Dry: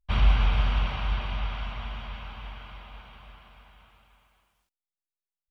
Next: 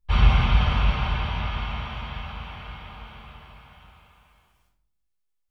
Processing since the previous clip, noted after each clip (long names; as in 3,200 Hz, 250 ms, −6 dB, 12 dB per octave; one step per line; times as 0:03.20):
convolution reverb RT60 0.65 s, pre-delay 14 ms, DRR −1 dB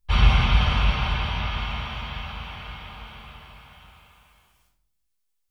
high-shelf EQ 2,800 Hz +7.5 dB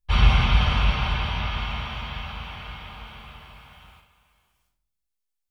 noise gate −51 dBFS, range −7 dB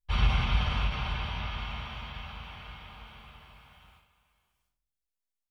every ending faded ahead of time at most 140 dB per second
level −7.5 dB